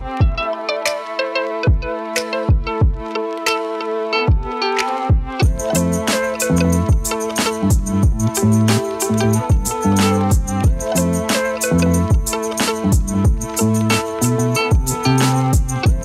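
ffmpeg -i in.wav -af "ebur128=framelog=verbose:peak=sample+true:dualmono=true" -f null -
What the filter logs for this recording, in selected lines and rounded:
Integrated loudness:
  I:         -14.4 LUFS
  Threshold: -24.4 LUFS
Loudness range:
  LRA:         2.9 LU
  Threshold: -34.4 LUFS
  LRA low:   -16.3 LUFS
  LRA high:  -13.4 LUFS
Sample peak:
  Peak:       -4.7 dBFS
True peak:
  Peak:       -4.6 dBFS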